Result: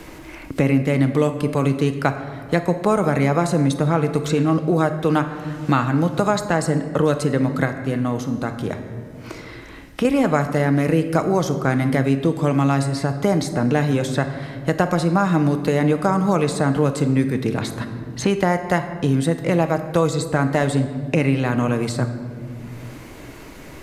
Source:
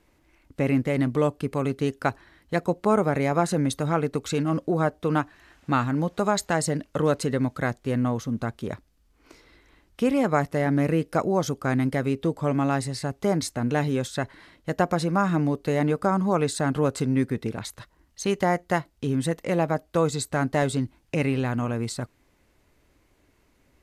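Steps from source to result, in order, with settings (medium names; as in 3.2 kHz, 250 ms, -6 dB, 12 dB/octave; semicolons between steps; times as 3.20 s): 7.65–10.05 s: feedback comb 91 Hz, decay 0.94 s, harmonics all, mix 60%; simulated room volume 780 m³, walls mixed, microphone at 0.59 m; three bands compressed up and down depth 70%; trim +4 dB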